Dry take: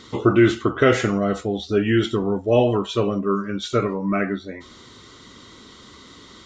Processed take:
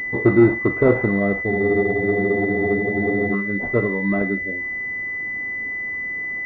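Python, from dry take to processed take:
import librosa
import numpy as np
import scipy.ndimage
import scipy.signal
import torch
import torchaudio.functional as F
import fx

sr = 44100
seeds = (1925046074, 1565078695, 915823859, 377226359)

y = fx.spec_freeze(x, sr, seeds[0], at_s=1.52, hold_s=1.82)
y = fx.pwm(y, sr, carrier_hz=2000.0)
y = y * 10.0 ** (1.5 / 20.0)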